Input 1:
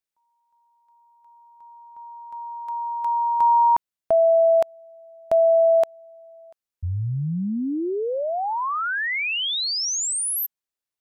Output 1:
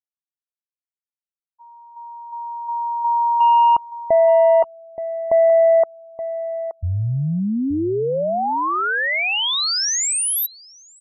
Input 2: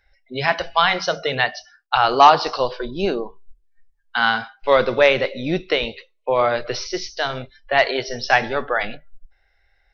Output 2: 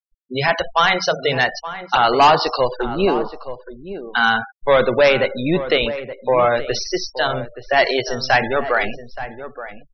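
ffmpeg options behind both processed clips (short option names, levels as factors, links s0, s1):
-filter_complex "[0:a]asoftclip=type=tanh:threshold=0.266,afftfilt=real='re*gte(hypot(re,im),0.0355)':imag='im*gte(hypot(re,im),0.0355)':win_size=1024:overlap=0.75,asplit=2[s0][s1];[s1]adelay=874.6,volume=0.251,highshelf=f=4000:g=-19.7[s2];[s0][s2]amix=inputs=2:normalize=0,volume=1.68"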